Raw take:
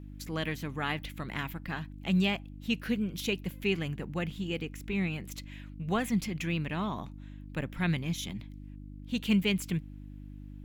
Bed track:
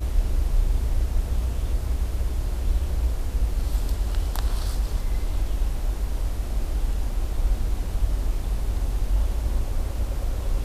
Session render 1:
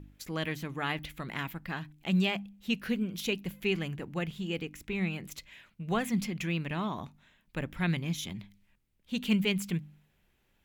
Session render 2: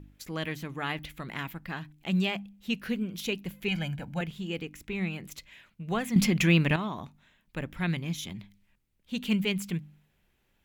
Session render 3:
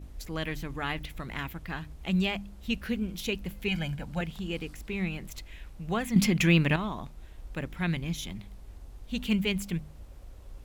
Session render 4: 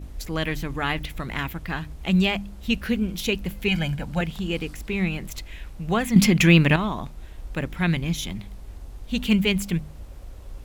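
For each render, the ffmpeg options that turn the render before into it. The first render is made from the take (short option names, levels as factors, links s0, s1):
-af "bandreject=f=50:t=h:w=4,bandreject=f=100:t=h:w=4,bandreject=f=150:t=h:w=4,bandreject=f=200:t=h:w=4,bandreject=f=250:t=h:w=4,bandreject=f=300:t=h:w=4"
-filter_complex "[0:a]asettb=1/sr,asplit=3[s0][s1][s2];[s0]atrim=end=3.684[s3];[s1]atrim=start=3.68:end=4.21,asetpts=PTS-STARTPTS,afade=t=in:d=0.004:c=qsin,afade=t=out:st=0.526:d=0.004:c=qsin,aecho=1:1:1.3:0.89,atrim=end_sample=23373[s4];[s2]atrim=start=4.206[s5];[s3][s4]acrossfade=d=0.004:c1=hsin:c2=qsin[s6];[s6][s5]acrossfade=d=0.004:c1=qsin:c2=hsin,asplit=3[s7][s8][s9];[s7]atrim=end=6.162[s10];[s8]atrim=start=6.158:end=6.762,asetpts=PTS-STARTPTS,volume=3.35[s11];[s9]atrim=start=6.758[s12];[s10][s11]acrossfade=d=0.004:c1=hsin:c2=hsin[s13];[s13][s12]acrossfade=d=0.004:c1=hsin:c2=hsin"
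-filter_complex "[1:a]volume=0.0891[s0];[0:a][s0]amix=inputs=2:normalize=0"
-af "volume=2.24"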